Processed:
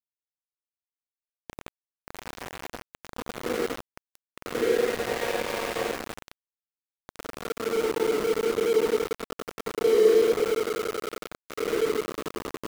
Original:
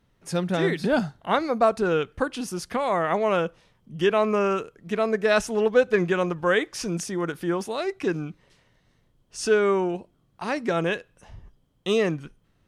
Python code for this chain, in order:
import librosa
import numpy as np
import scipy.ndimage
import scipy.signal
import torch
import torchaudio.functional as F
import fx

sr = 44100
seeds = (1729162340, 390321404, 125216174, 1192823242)

p1 = fx.chord_vocoder(x, sr, chord='minor triad', root=51)
p2 = fx.doppler_pass(p1, sr, speed_mps=19, closest_m=6.2, pass_at_s=5.06)
p3 = fx.rider(p2, sr, range_db=3, speed_s=2.0)
p4 = p2 + (p3 * 10.0 ** (1.5 / 20.0))
p5 = fx.fixed_phaser(p4, sr, hz=920.0, stages=8)
p6 = fx.paulstretch(p5, sr, seeds[0], factor=10.0, window_s=0.05, from_s=4.52)
p7 = fx.echo_swell(p6, sr, ms=92, loudest=5, wet_db=-16.5)
p8 = np.where(np.abs(p7) >= 10.0 ** (-20.0 / 20.0), p7, 0.0)
y = p8 * 10.0 ** (-6.5 / 20.0)